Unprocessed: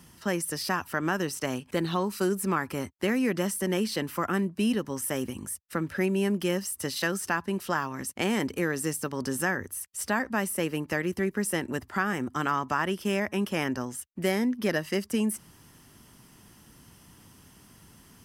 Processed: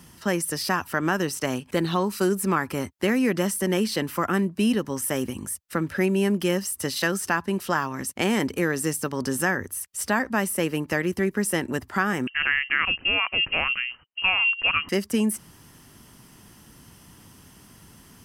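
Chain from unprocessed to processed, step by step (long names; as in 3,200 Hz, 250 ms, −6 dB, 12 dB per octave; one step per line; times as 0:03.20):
0:12.27–0:14.89: voice inversion scrambler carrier 3,000 Hz
level +4 dB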